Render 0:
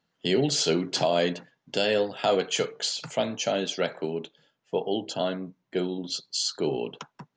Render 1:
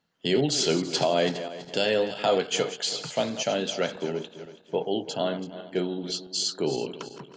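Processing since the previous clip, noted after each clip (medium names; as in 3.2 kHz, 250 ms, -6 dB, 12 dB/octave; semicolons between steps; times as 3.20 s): backward echo that repeats 165 ms, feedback 59%, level -12 dB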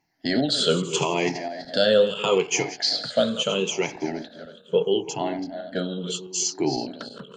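drifting ripple filter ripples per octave 0.73, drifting -0.76 Hz, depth 18 dB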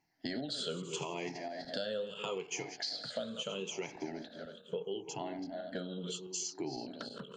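compression 4:1, threshold -32 dBFS, peak gain reduction 15.5 dB; trim -5.5 dB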